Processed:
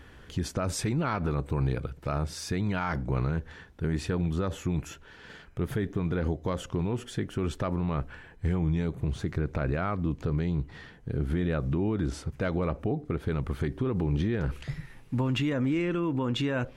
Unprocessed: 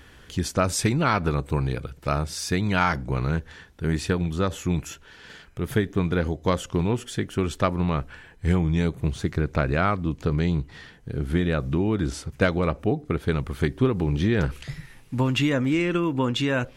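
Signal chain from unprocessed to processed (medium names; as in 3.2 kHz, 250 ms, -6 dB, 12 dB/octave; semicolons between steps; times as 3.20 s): treble shelf 2.5 kHz -8.5 dB; peak limiter -20 dBFS, peak gain reduction 11 dB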